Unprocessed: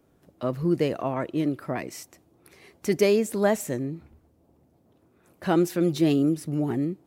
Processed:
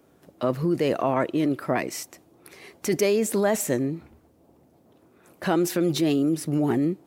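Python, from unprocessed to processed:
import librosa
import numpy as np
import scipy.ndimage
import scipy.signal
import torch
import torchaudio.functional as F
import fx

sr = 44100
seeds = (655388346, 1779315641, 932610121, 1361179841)

p1 = fx.low_shelf(x, sr, hz=120.0, db=-11.0)
p2 = fx.over_compress(p1, sr, threshold_db=-28.0, ratio=-1.0)
p3 = p1 + (p2 * 10.0 ** (2.0 / 20.0))
y = p3 * 10.0 ** (-2.5 / 20.0)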